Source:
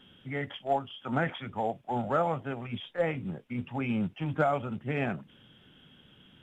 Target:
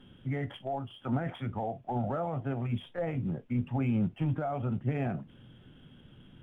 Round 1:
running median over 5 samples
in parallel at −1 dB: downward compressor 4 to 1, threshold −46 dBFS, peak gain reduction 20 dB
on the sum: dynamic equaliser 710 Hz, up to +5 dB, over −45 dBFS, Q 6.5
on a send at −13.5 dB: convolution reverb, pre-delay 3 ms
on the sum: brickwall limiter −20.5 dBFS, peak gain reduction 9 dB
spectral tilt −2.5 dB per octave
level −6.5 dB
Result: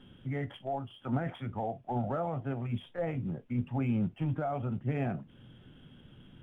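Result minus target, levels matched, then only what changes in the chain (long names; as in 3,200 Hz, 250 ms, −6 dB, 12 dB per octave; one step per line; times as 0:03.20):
downward compressor: peak gain reduction +8.5 dB
change: downward compressor 4 to 1, threshold −34.5 dBFS, peak gain reduction 11.5 dB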